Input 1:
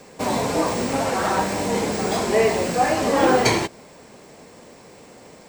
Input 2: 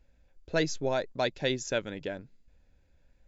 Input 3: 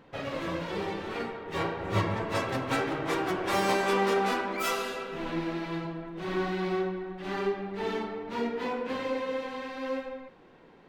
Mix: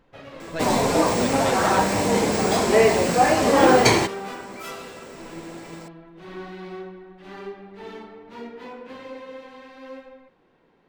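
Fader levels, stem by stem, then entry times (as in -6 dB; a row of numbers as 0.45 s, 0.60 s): +2.0 dB, -4.0 dB, -6.5 dB; 0.40 s, 0.00 s, 0.00 s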